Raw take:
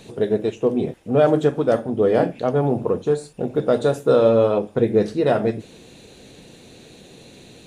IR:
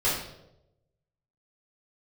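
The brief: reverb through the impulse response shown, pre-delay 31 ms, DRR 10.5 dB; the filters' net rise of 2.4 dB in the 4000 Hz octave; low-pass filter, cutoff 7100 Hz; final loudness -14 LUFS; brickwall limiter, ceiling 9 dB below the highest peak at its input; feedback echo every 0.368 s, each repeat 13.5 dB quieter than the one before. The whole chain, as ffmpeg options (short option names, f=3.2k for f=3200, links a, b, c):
-filter_complex "[0:a]lowpass=7.1k,equalizer=f=4k:t=o:g=3,alimiter=limit=-13.5dB:level=0:latency=1,aecho=1:1:368|736:0.211|0.0444,asplit=2[a][b];[1:a]atrim=start_sample=2205,adelay=31[c];[b][c]afir=irnorm=-1:irlink=0,volume=-22.5dB[d];[a][d]amix=inputs=2:normalize=0,volume=9.5dB"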